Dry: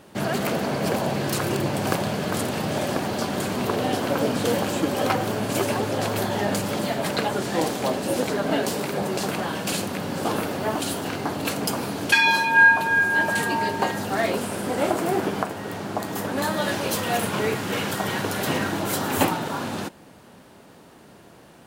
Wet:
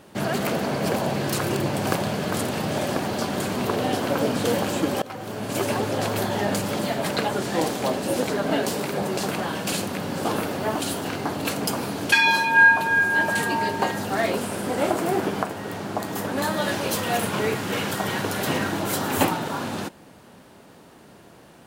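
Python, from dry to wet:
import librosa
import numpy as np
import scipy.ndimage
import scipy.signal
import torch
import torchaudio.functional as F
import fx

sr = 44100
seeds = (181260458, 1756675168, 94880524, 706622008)

y = fx.edit(x, sr, fx.fade_in_from(start_s=5.02, length_s=0.7, floor_db=-21.5), tone=tone)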